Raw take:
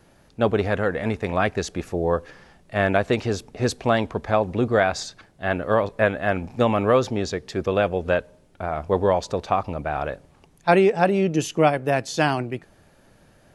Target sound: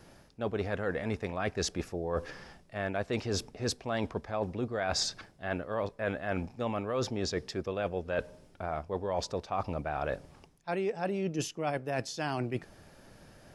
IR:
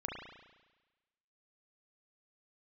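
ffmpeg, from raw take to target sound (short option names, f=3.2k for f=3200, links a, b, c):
-af "areverse,acompressor=threshold=-29dB:ratio=12,areverse,equalizer=f=5.2k:t=o:w=0.24:g=6.5"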